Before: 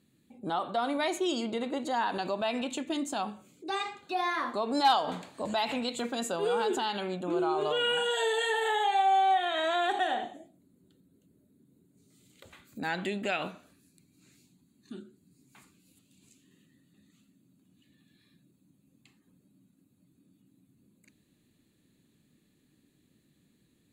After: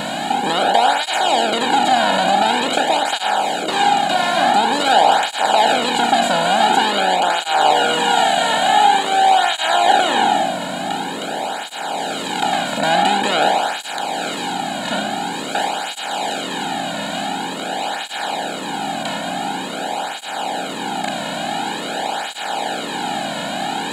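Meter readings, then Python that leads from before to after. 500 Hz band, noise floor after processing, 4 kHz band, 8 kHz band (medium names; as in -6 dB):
+12.0 dB, -27 dBFS, +17.0 dB, +19.0 dB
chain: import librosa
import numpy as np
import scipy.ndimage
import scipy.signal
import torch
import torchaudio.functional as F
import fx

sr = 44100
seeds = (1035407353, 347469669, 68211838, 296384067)

y = fx.bin_compress(x, sr, power=0.2)
y = y + 0.59 * np.pad(y, (int(1.3 * sr / 1000.0), 0))[:len(y)]
y = fx.flanger_cancel(y, sr, hz=0.47, depth_ms=2.6)
y = y * librosa.db_to_amplitude(5.0)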